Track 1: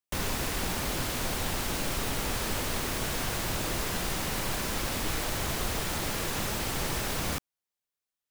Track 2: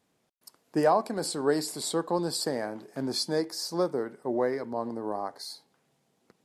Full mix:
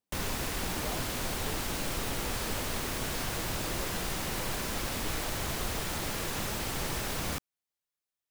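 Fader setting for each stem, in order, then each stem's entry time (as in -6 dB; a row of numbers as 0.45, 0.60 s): -2.5, -20.0 dB; 0.00, 0.00 s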